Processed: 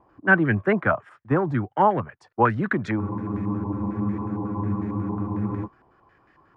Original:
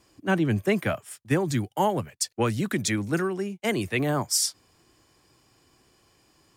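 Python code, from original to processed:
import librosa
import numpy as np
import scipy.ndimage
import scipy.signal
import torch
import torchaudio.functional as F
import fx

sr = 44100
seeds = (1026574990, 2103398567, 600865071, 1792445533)

y = fx.spec_freeze(x, sr, seeds[0], at_s=3.03, hold_s=2.62)
y = fx.filter_held_lowpass(y, sr, hz=11.0, low_hz=900.0, high_hz=1800.0)
y = y * librosa.db_to_amplitude(1.5)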